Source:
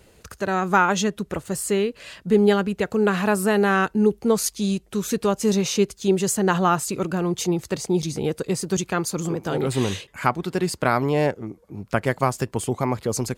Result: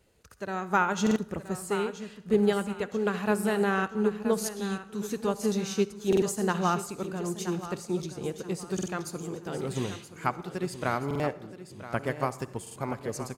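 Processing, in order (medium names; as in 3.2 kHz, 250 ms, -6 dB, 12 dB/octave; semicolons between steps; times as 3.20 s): 0.99–1.66 s: peaking EQ 160 Hz +5 dB 2.9 oct; feedback delay 975 ms, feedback 37%, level -9.5 dB; on a send at -12 dB: reverberation RT60 0.95 s, pre-delay 47 ms; on the sum: buffer glitch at 1.02/6.08/8.74/11.06/12.62 s, samples 2048, times 2; upward expansion 1.5:1, over -29 dBFS; trim -5.5 dB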